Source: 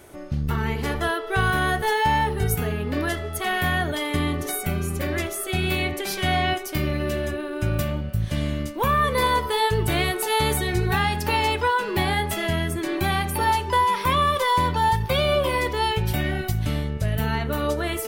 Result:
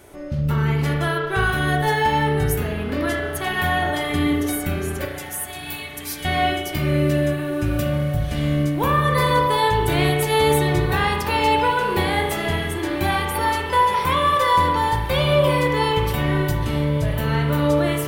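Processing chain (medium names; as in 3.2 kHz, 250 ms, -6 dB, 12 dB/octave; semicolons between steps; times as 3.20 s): 5.05–6.25 s: differentiator; echo that smears into a reverb 1837 ms, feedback 49%, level -16 dB; spring tank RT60 1.2 s, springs 34 ms, chirp 45 ms, DRR 1.5 dB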